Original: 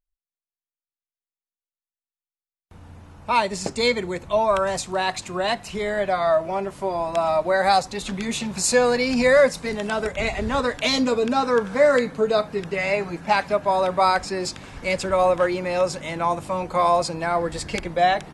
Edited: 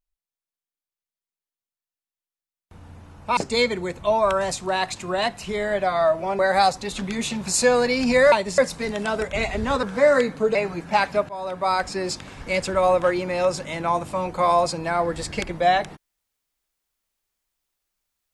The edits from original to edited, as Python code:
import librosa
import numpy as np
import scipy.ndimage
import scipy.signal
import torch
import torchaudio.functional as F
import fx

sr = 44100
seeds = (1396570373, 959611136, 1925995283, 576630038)

y = fx.edit(x, sr, fx.move(start_s=3.37, length_s=0.26, to_s=9.42),
    fx.cut(start_s=6.65, length_s=0.84),
    fx.cut(start_s=10.67, length_s=0.94),
    fx.cut(start_s=12.33, length_s=0.58),
    fx.fade_in_from(start_s=13.65, length_s=0.69, floor_db=-16.0), tone=tone)